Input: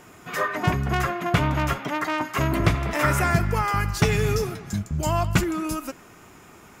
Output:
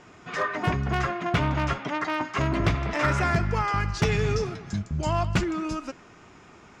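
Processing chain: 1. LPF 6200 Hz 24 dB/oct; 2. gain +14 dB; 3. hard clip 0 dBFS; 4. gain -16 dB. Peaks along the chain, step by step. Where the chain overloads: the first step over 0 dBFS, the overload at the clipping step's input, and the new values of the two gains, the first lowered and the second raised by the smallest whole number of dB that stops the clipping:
-9.0, +5.0, 0.0, -16.0 dBFS; step 2, 5.0 dB; step 2 +9 dB, step 4 -11 dB

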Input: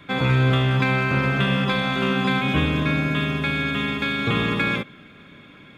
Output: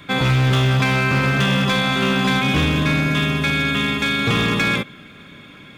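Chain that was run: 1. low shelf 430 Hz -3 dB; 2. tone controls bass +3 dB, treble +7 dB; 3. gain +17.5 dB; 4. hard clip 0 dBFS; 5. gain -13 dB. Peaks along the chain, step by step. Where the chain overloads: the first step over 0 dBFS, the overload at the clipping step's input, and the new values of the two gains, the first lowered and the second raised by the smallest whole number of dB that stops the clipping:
-9.5, -8.0, +9.5, 0.0, -13.0 dBFS; step 3, 9.5 dB; step 3 +7.5 dB, step 5 -3 dB

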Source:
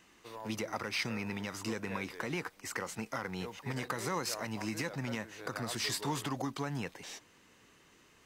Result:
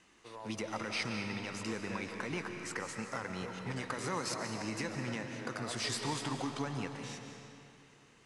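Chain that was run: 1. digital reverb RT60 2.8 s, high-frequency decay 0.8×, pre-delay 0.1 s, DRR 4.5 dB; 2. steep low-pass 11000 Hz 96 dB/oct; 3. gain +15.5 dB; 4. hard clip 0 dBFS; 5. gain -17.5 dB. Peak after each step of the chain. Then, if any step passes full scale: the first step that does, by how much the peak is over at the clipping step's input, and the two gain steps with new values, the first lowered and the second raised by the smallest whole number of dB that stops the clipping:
-20.0, -20.5, -5.0, -5.0, -22.5 dBFS; no overload

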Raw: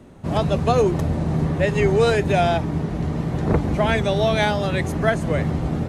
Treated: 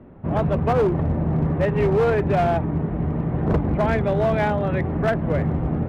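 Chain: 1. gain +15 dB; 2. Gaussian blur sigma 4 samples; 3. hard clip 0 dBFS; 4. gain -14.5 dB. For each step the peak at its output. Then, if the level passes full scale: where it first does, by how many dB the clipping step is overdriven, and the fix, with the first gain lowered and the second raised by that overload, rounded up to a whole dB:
+9.5, +8.5, 0.0, -14.5 dBFS; step 1, 8.5 dB; step 1 +6 dB, step 4 -5.5 dB

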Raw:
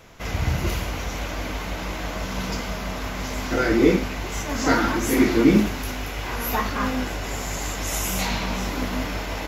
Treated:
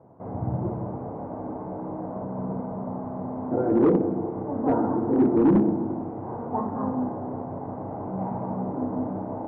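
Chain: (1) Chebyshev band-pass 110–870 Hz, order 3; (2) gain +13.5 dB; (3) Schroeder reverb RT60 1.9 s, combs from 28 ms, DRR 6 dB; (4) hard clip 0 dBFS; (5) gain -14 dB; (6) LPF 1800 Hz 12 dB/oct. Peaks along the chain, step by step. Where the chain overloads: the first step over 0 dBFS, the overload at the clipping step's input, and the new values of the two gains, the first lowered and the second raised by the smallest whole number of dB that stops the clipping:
-5.0, +8.5, +8.5, 0.0, -14.0, -13.5 dBFS; step 2, 8.5 dB; step 2 +4.5 dB, step 5 -5 dB

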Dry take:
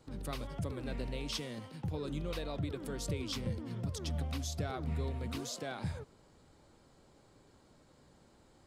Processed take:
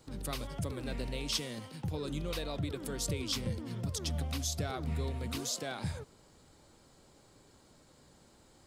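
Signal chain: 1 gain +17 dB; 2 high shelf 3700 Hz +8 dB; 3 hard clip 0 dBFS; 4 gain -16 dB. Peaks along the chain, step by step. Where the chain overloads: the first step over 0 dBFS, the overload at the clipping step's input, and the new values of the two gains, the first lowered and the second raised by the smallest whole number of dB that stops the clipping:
-7.0, -3.0, -3.0, -19.0 dBFS; no overload

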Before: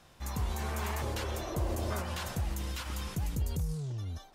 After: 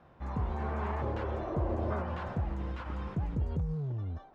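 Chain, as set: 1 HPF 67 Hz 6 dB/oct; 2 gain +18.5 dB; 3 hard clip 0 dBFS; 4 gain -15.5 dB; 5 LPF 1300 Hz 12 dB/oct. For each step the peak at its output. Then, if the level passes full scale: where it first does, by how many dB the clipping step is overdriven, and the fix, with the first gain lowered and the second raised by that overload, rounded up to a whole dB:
-23.0, -4.5, -4.5, -20.0, -21.0 dBFS; no overload

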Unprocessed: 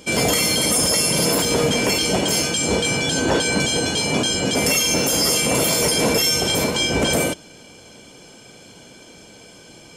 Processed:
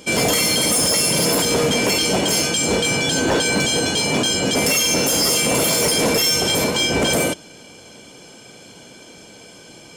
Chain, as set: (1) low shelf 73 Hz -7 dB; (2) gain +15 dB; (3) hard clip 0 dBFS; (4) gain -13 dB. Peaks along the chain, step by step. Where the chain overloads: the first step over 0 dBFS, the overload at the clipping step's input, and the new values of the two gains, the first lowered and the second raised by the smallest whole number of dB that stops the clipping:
-6.5, +8.5, 0.0, -13.0 dBFS; step 2, 8.5 dB; step 2 +6 dB, step 4 -4 dB

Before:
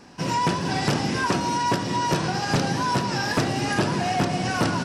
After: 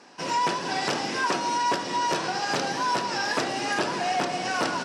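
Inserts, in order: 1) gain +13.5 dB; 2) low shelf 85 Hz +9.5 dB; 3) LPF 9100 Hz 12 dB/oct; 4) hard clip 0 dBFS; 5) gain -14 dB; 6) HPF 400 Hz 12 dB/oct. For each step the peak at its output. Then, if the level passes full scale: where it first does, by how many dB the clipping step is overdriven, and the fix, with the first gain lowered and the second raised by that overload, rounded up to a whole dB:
-2.0, +3.0, +3.0, 0.0, -14.0, -12.0 dBFS; step 2, 3.0 dB; step 1 +10.5 dB, step 5 -11 dB

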